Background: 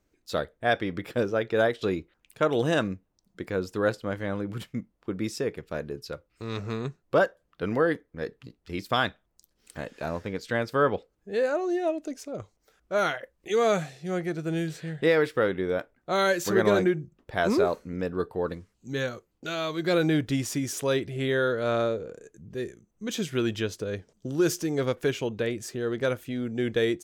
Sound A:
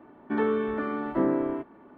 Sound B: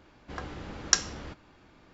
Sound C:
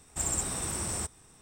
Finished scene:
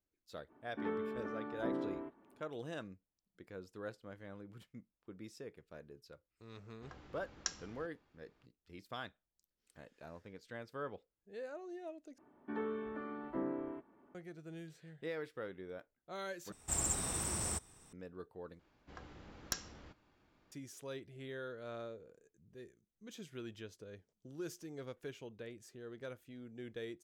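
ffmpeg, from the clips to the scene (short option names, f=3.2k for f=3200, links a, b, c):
-filter_complex "[1:a]asplit=2[a][b];[2:a]asplit=2[c][d];[0:a]volume=-20dB[e];[d]aeval=exprs='clip(val(0),-1,0.119)':c=same[f];[e]asplit=4[g][h][i][j];[g]atrim=end=12.184[k];[b]atrim=end=1.97,asetpts=PTS-STARTPTS,volume=-14dB[l];[h]atrim=start=14.146:end=16.524[m];[3:a]atrim=end=1.41,asetpts=PTS-STARTPTS,volume=-4.5dB[n];[i]atrim=start=17.926:end=18.594[o];[f]atrim=end=1.93,asetpts=PTS-STARTPTS,volume=-14dB[p];[j]atrim=start=20.516[q];[a]atrim=end=1.97,asetpts=PTS-STARTPTS,volume=-13.5dB,afade=t=in:d=0.05,afade=t=out:st=1.92:d=0.05,adelay=470[r];[c]atrim=end=1.93,asetpts=PTS-STARTPTS,volume=-16.5dB,afade=t=in:d=0.004:c=hsin,afade=t=out:st=1.926:d=0.004:c=hsin,adelay=6530[s];[k][l]acrossfade=d=0.004:c1=hsin:c2=hsin[t];[t][m]acrossfade=d=0.004:c1=hsin:c2=hsin[u];[u][n]acrossfade=d=0.004:c1=hsin:c2=hsin[v];[v][o]acrossfade=d=0.004:c1=hsin:c2=hsin[w];[w][p]acrossfade=d=0.004:c1=hsin:c2=hsin[x];[x][q]acrossfade=d=0.004:c1=hsin:c2=hsin[y];[y][r][s]amix=inputs=3:normalize=0"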